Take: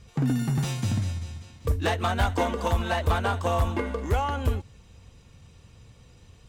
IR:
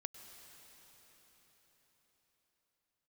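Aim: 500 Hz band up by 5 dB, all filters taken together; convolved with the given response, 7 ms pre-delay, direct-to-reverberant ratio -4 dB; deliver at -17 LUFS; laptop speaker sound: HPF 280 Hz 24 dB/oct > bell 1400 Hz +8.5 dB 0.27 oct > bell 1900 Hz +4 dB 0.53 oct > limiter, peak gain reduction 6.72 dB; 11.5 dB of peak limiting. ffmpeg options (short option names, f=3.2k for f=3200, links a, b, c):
-filter_complex "[0:a]equalizer=f=500:t=o:g=6,alimiter=limit=-22.5dB:level=0:latency=1,asplit=2[a][b];[1:a]atrim=start_sample=2205,adelay=7[c];[b][c]afir=irnorm=-1:irlink=0,volume=7.5dB[d];[a][d]amix=inputs=2:normalize=0,highpass=f=280:w=0.5412,highpass=f=280:w=1.3066,equalizer=f=1.4k:t=o:w=0.27:g=8.5,equalizer=f=1.9k:t=o:w=0.53:g=4,volume=12.5dB,alimiter=limit=-6dB:level=0:latency=1"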